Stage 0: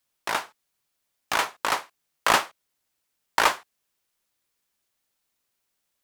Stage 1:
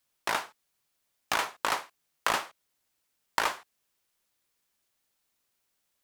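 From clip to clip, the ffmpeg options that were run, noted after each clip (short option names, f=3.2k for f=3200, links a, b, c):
-af "acompressor=threshold=-24dB:ratio=5"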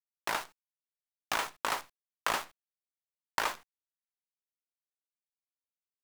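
-af "acrusher=bits=7:dc=4:mix=0:aa=0.000001,volume=-3.5dB"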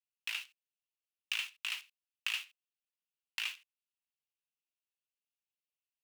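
-af "highpass=f=2.7k:t=q:w=6,volume=-8.5dB"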